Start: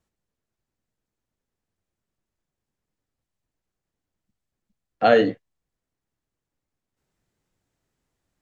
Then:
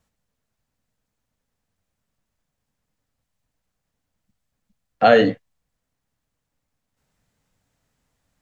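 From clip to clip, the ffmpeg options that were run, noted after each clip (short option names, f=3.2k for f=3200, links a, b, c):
-filter_complex "[0:a]equalizer=f=360:w=5.1:g=-12.5,asplit=2[a][b];[b]alimiter=limit=-14dB:level=0:latency=1,volume=-1.5dB[c];[a][c]amix=inputs=2:normalize=0,volume=1dB"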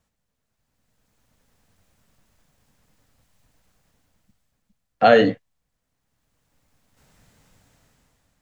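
-af "dynaudnorm=f=290:g=7:m=15dB,volume=-1dB"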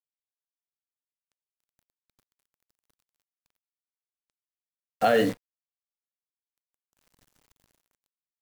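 -af "acrusher=bits=6:dc=4:mix=0:aa=0.000001,alimiter=limit=-6dB:level=0:latency=1:release=25,volume=-6dB"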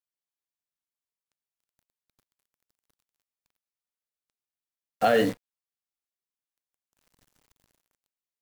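-af "aeval=exprs='0.266*(cos(1*acos(clip(val(0)/0.266,-1,1)))-cos(1*PI/2))+0.00531*(cos(7*acos(clip(val(0)/0.266,-1,1)))-cos(7*PI/2))':c=same"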